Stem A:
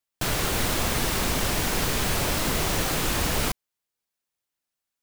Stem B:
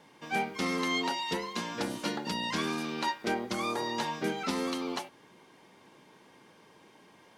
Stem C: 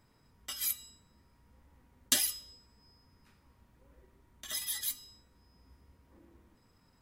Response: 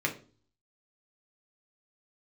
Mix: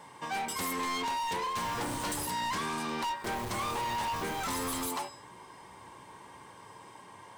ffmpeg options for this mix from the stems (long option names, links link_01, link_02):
-filter_complex "[0:a]asoftclip=type=hard:threshold=-25dB,adelay=1350,volume=-15.5dB,asplit=3[link_01][link_02][link_03];[link_01]atrim=end=2.26,asetpts=PTS-STARTPTS,afade=type=out:start_time=2.256:duration=0.004:curve=hsin[link_04];[link_02]atrim=start=2.26:end=3.24,asetpts=PTS-STARTPTS,volume=0[link_05];[link_03]atrim=start=3.24,asetpts=PTS-STARTPTS,afade=type=in:duration=0.004:curve=hsin[link_06];[link_04][link_05][link_06]concat=n=3:v=0:a=1[link_07];[1:a]volume=1.5dB,asplit=2[link_08][link_09];[link_09]volume=-17dB[link_10];[2:a]tiltshelf=frequency=970:gain=-7.5,volume=-4dB[link_11];[link_08][link_11]amix=inputs=2:normalize=0,equalizer=frequency=8400:width=4.3:gain=14.5,acompressor=threshold=-31dB:ratio=6,volume=0dB[link_12];[3:a]atrim=start_sample=2205[link_13];[link_10][link_13]afir=irnorm=-1:irlink=0[link_14];[link_07][link_12][link_14]amix=inputs=3:normalize=0,equalizer=frequency=100:width_type=o:width=0.67:gain=10,equalizer=frequency=250:width_type=o:width=0.67:gain=-4,equalizer=frequency=1000:width_type=o:width=0.67:gain=10,asoftclip=type=hard:threshold=-31dB"